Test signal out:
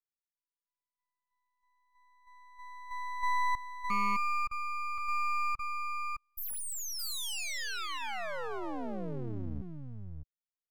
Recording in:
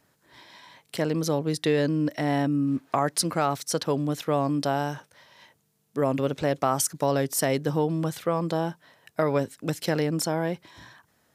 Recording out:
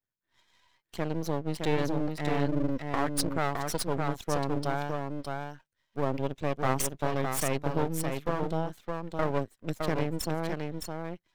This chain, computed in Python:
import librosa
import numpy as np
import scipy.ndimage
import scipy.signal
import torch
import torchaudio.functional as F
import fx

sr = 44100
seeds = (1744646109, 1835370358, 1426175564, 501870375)

y = fx.bin_expand(x, sr, power=1.5)
y = y + 10.0 ** (-4.5 / 20.0) * np.pad(y, (int(613 * sr / 1000.0), 0))[:len(y)]
y = np.maximum(y, 0.0)